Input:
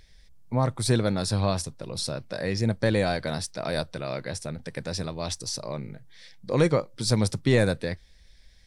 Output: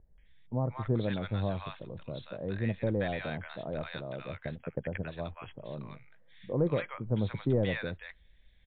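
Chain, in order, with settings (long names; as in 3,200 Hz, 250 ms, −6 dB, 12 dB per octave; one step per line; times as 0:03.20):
0:04.28–0:05.47: transient designer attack +8 dB, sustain −10 dB
multiband delay without the direct sound lows, highs 180 ms, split 950 Hz
level −6 dB
MP3 40 kbit/s 8,000 Hz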